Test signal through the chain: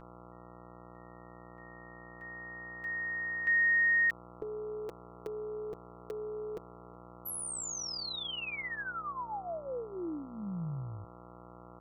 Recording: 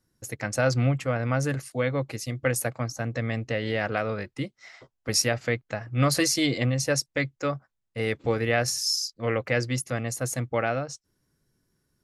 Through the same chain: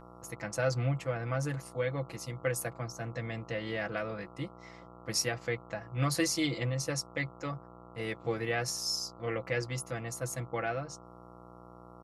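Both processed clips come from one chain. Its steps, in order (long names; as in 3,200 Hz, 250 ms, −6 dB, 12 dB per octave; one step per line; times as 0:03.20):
hum with harmonics 60 Hz, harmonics 23, −44 dBFS −2 dB per octave
comb filter 6 ms, depth 62%
level −9 dB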